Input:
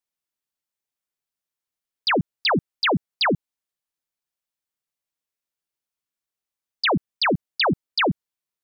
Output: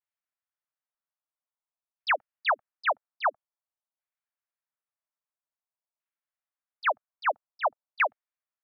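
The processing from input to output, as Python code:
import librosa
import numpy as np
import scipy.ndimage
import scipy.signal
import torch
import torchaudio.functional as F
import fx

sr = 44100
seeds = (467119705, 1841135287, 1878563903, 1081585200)

y = fx.vibrato(x, sr, rate_hz=1.1, depth_cents=82.0)
y = scipy.signal.sosfilt(scipy.signal.ellip(4, 1.0, 40, 590.0, 'highpass', fs=sr, output='sos'), y)
y = fx.filter_lfo_lowpass(y, sr, shape='saw_down', hz=0.5, low_hz=860.0, high_hz=2200.0, q=1.3)
y = F.gain(torch.from_numpy(y), -4.0).numpy()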